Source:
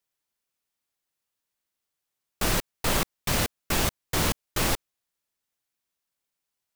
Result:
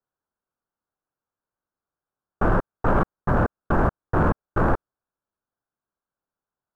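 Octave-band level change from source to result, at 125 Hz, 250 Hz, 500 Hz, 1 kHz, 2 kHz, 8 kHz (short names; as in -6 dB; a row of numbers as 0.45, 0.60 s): +7.0 dB, +7.0 dB, +7.0 dB, +7.5 dB, +0.5 dB, under -30 dB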